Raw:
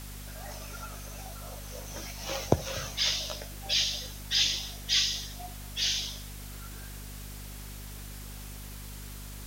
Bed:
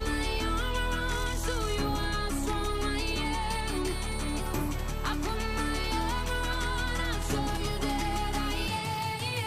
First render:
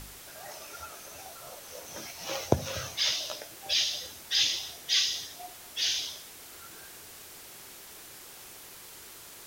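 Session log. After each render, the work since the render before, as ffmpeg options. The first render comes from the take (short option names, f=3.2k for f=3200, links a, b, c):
-af "bandreject=f=50:t=h:w=4,bandreject=f=100:t=h:w=4,bandreject=f=150:t=h:w=4,bandreject=f=200:t=h:w=4,bandreject=f=250:t=h:w=4"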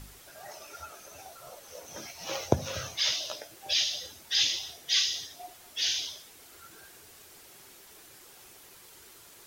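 -af "afftdn=nr=6:nf=-48"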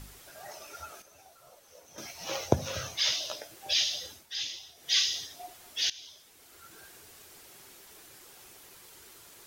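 -filter_complex "[0:a]asplit=6[a][b][c][d][e][f];[a]atrim=end=1.022[g];[b]atrim=start=1.018:end=1.982,asetpts=PTS-STARTPTS,volume=-9dB[h];[c]atrim=start=1.978:end=4.27,asetpts=PTS-STARTPTS,afade=t=out:st=2.142:d=0.15:silence=0.334965[i];[d]atrim=start=4.27:end=4.75,asetpts=PTS-STARTPTS,volume=-9.5dB[j];[e]atrim=start=4.75:end=5.9,asetpts=PTS-STARTPTS,afade=t=in:d=0.15:silence=0.334965,afade=t=out:st=1.146:d=0.004:c=hsin:silence=0.112202[k];[f]atrim=start=5.9,asetpts=PTS-STARTPTS,afade=t=in:d=0.91:silence=0.112202[l];[g][h]acrossfade=d=0.004:c1=hsin:c2=hsin[m];[i][j][k][l]concat=n=4:v=0:a=1[n];[m][n]acrossfade=d=0.004:c1=hsin:c2=hsin"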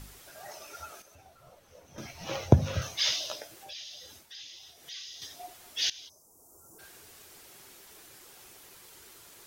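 -filter_complex "[0:a]asettb=1/sr,asplit=3[a][b][c];[a]atrim=end=1.154[d];[b]atrim=start=1.15:end=2.82,asetpts=PTS-STARTPTS,afade=t=in:d=0.004:c=qsin,afade=t=out:st=1.666:d=0.004:c=qsin,bass=f=250:g=11,treble=f=4k:g=-7[e];[c]atrim=start=2.816[f];[d][e]acrossfade=d=0.004:c1=hsin:c2=qsin[g];[g][f]acrossfade=d=0.004:c1=qsin:c2=hsin,asettb=1/sr,asplit=3[h][i][j];[h]atrim=end=3.584[k];[i]atrim=start=3.58:end=5.22,asetpts=PTS-STARTPTS,afade=t=in:d=0.004:c=qsin,afade=t=out:st=1.636:d=0.004:c=qsin,acompressor=threshold=-46dB:ratio=3:attack=3.2:release=140:knee=1:detection=peak[l];[j]atrim=start=5.216[m];[k][l]acrossfade=d=0.004:c1=hsin:c2=qsin[n];[n][m]acrossfade=d=0.004:c1=qsin:c2=hsin,asplit=3[o][p][q];[o]afade=t=out:st=6.08:d=0.02[r];[p]asuperstop=centerf=2600:order=8:qfactor=0.51,afade=t=in:st=6.08:d=0.02,afade=t=out:st=6.78:d=0.02[s];[q]afade=t=in:st=6.78:d=0.02[t];[r][s][t]amix=inputs=3:normalize=0"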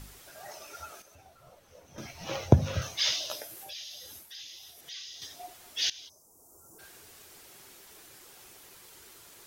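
-filter_complex "[0:a]asettb=1/sr,asplit=3[a][b][c];[a]atrim=end=3.304[d];[b]atrim=start=3.3:end=4.81,asetpts=PTS-STARTPTS,afade=t=in:d=0.004:c=qsin,afade=t=out:st=1.506:d=0.004:c=qsin,equalizer=f=12k:w=1.3:g=13[e];[c]atrim=start=4.806[f];[d][e]acrossfade=d=0.004:c1=hsin:c2=qsin[g];[g][f]acrossfade=d=0.004:c1=qsin:c2=hsin"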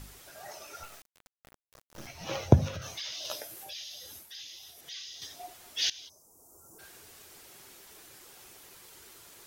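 -filter_complex "[0:a]asettb=1/sr,asplit=3[a][b][c];[a]atrim=end=0.834[d];[b]atrim=start=0.83:end=2.07,asetpts=PTS-STARTPTS,afade=t=in:d=0.004:c=qsin,afade=t=out:st=1.236:d=0.004:c=qsin,acrusher=bits=5:dc=4:mix=0:aa=0.000001[e];[c]atrim=start=2.066[f];[d][e]acrossfade=d=0.004:c1=hsin:c2=qsin[g];[g][f]acrossfade=d=0.004:c1=qsin:c2=hsin,asettb=1/sr,asplit=3[h][i][j];[h]atrim=end=2.684[k];[i]atrim=start=2.68:end=3.25,asetpts=PTS-STARTPTS,afade=t=in:d=0.004:c=qsin,afade=t=out:st=0.566:d=0.004:c=qsin,acompressor=threshold=-35dB:ratio=10:attack=3.2:release=140:knee=1:detection=peak[l];[j]atrim=start=3.246[m];[k][l]acrossfade=d=0.004:c1=hsin:c2=qsin[n];[n][m]acrossfade=d=0.004:c1=qsin:c2=hsin"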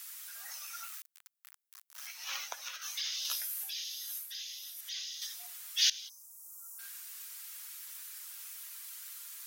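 -af "highpass=f=1.2k:w=0.5412,highpass=f=1.2k:w=1.3066,highshelf=f=8.1k:g=11.5"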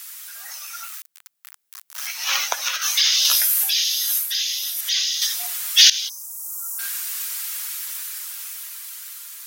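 -af "dynaudnorm=f=460:g=9:m=11dB,alimiter=level_in=9dB:limit=-1dB:release=50:level=0:latency=1"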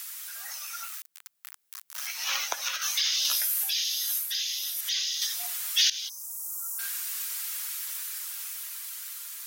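-filter_complex "[0:a]acrossover=split=330[a][b];[b]acompressor=threshold=-40dB:ratio=1.5[c];[a][c]amix=inputs=2:normalize=0"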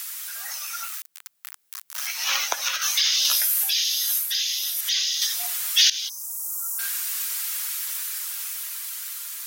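-af "volume=5.5dB"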